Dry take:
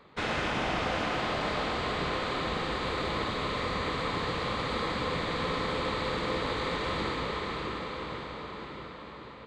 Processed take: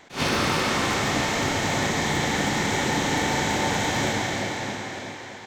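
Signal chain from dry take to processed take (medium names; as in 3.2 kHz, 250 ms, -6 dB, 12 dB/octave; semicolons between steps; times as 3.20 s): in parallel at -10.5 dB: integer overflow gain 20.5 dB; on the sum: dynamic bell 110 Hz, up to +7 dB, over -49 dBFS, Q 0.72; speed mistake 45 rpm record played at 78 rpm; attacks held to a fixed rise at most 210 dB/s; trim +3.5 dB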